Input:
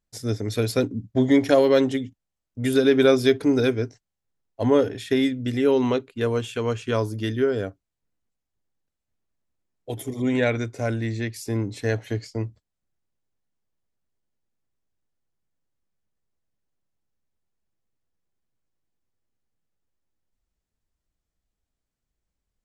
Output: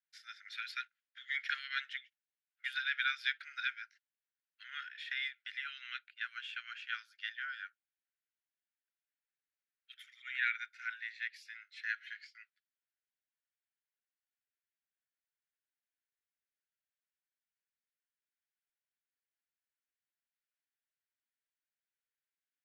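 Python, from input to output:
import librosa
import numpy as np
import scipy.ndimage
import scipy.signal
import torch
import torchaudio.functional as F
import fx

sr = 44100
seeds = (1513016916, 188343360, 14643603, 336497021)

y = scipy.signal.sosfilt(scipy.signal.butter(16, 1400.0, 'highpass', fs=sr, output='sos'), x)
y = fx.air_absorb(y, sr, metres=350.0)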